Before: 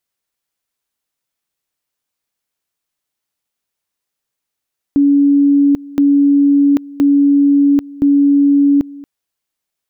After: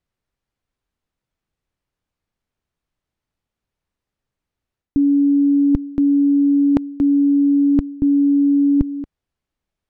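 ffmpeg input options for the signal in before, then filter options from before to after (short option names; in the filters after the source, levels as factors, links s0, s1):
-f lavfi -i "aevalsrc='pow(10,(-7-21.5*gte(mod(t,1.02),0.79))/20)*sin(2*PI*283*t)':d=4.08:s=44100"
-af "aemphasis=mode=reproduction:type=riaa,areverse,acompressor=threshold=0.2:ratio=6,areverse"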